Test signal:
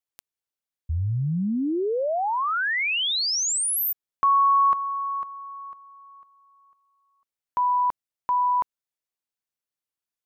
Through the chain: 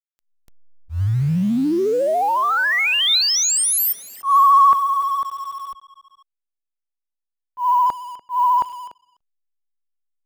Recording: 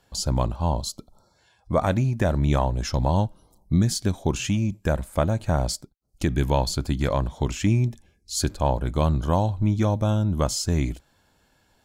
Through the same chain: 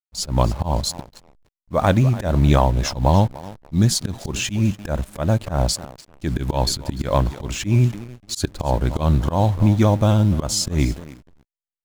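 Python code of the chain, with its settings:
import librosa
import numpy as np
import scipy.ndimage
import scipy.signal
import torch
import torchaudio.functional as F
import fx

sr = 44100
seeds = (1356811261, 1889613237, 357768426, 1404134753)

p1 = fx.peak_eq(x, sr, hz=3800.0, db=3.5, octaves=0.22)
p2 = fx.vibrato(p1, sr, rate_hz=14.0, depth_cents=46.0)
p3 = fx.echo_thinned(p2, sr, ms=292, feedback_pct=35, hz=180.0, wet_db=-16.5)
p4 = fx.quant_dither(p3, sr, seeds[0], bits=6, dither='none')
p5 = p3 + F.gain(torch.from_numpy(p4), -10.0).numpy()
p6 = fx.backlash(p5, sr, play_db=-39.5)
p7 = fx.auto_swell(p6, sr, attack_ms=131.0)
y = F.gain(torch.from_numpy(p7), 4.0).numpy()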